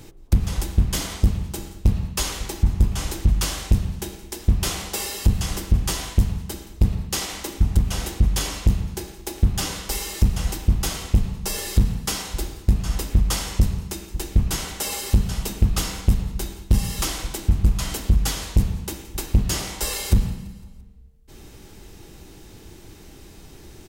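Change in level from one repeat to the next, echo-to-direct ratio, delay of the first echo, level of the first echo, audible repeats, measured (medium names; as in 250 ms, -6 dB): -5.0 dB, -18.5 dB, 170 ms, -20.0 dB, 3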